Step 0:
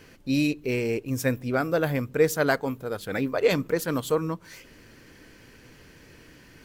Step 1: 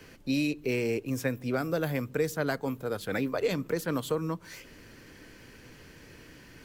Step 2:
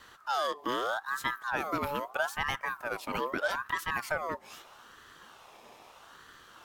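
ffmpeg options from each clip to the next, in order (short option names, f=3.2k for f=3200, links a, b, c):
-filter_complex "[0:a]acrossover=split=98|290|3800[a][b][c][d];[a]acompressor=threshold=-51dB:ratio=4[e];[b]acompressor=threshold=-33dB:ratio=4[f];[c]acompressor=threshold=-29dB:ratio=4[g];[d]acompressor=threshold=-42dB:ratio=4[h];[e][f][g][h]amix=inputs=4:normalize=0"
-af "aeval=exprs='val(0)*sin(2*PI*1100*n/s+1100*0.35/0.79*sin(2*PI*0.79*n/s))':c=same"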